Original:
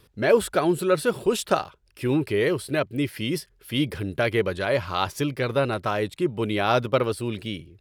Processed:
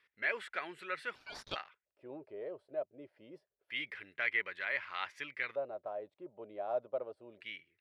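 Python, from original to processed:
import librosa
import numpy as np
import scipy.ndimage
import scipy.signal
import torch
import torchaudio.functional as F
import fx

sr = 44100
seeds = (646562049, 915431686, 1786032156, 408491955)

y = fx.filter_lfo_lowpass(x, sr, shape='square', hz=0.27, low_hz=630.0, high_hz=2000.0, q=4.8)
y = np.diff(y, prepend=0.0)
y = fx.ring_mod(y, sr, carrier_hz=1900.0, at=(1.15, 1.56))
y = F.gain(torch.from_numpy(y), -2.0).numpy()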